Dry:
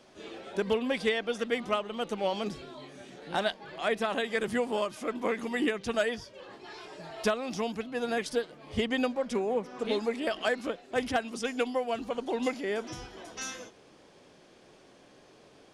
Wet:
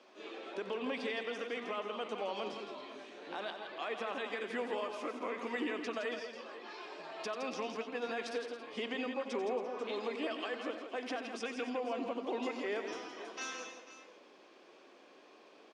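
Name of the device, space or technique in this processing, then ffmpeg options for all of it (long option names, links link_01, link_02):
laptop speaker: -filter_complex "[0:a]asettb=1/sr,asplit=3[link_01][link_02][link_03];[link_01]atrim=end=11.674[link_04];[link_02]atrim=start=11.67:end=12.26,asetpts=PTS-STARTPTS,afade=type=in:duration=0.004:curve=qsin,afade=type=out:start_time=0.586:duration=0.004:curve=qsin,lowshelf=frequency=500:gain=8.5[link_05];[link_03]atrim=start=12.256[link_06];[link_04][link_05]acrossfade=duration=0.004:curve1=hsin:curve2=qsin[link_07];[link_07][link_06]acrossfade=duration=0.004:curve1=qsin:curve2=hsin,highpass=frequency=260:width=0.5412,highpass=frequency=260:width=1.3066,equalizer=frequency=1100:width_type=o:width=0.32:gain=5,equalizer=frequency=2500:width_type=o:width=0.2:gain=5,alimiter=level_in=1.5dB:limit=-24dB:level=0:latency=1:release=104,volume=-1.5dB,lowpass=5200,aecho=1:1:91|165|276|490|512:0.266|0.422|0.188|0.168|0.112,volume=-3.5dB"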